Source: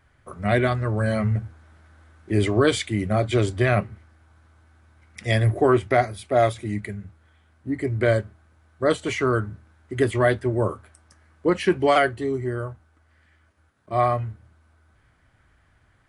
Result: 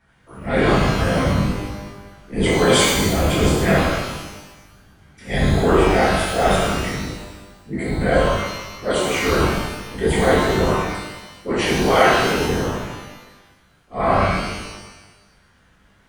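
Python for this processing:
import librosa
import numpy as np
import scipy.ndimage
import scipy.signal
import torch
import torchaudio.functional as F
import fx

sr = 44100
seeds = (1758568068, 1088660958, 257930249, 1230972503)

y = fx.transient(x, sr, attack_db=-8, sustain_db=7)
y = fx.whisperise(y, sr, seeds[0])
y = fx.rev_shimmer(y, sr, seeds[1], rt60_s=1.1, semitones=12, shimmer_db=-8, drr_db=-8.0)
y = F.gain(torch.from_numpy(y), -3.5).numpy()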